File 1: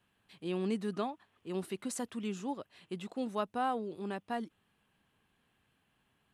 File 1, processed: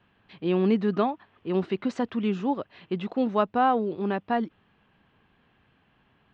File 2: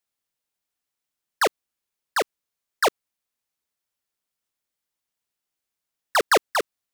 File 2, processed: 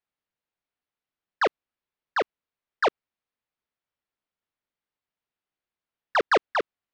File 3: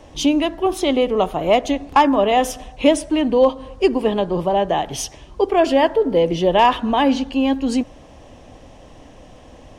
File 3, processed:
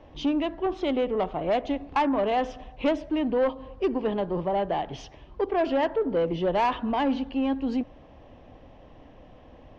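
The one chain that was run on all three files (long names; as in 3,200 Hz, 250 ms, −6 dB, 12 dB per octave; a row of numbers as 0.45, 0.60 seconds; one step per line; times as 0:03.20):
Gaussian smoothing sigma 2.3 samples
soft clipping −11 dBFS
loudness normalisation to −27 LKFS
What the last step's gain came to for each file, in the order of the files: +11.5, −0.5, −6.5 decibels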